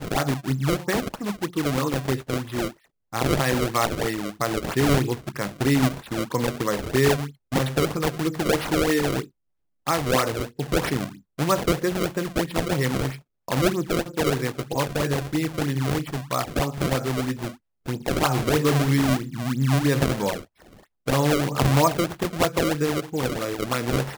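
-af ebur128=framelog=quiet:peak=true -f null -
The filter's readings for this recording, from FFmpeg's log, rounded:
Integrated loudness:
  I:         -24.4 LUFS
  Threshold: -34.6 LUFS
Loudness range:
  LRA:         2.7 LU
  Threshold: -44.5 LUFS
  LRA low:   -25.9 LUFS
  LRA high:  -23.2 LUFS
True peak:
  Peak:       -6.2 dBFS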